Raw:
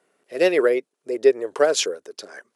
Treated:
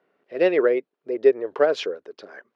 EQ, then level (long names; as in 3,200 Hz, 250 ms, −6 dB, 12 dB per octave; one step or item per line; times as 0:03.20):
high-frequency loss of the air 300 metres
0.0 dB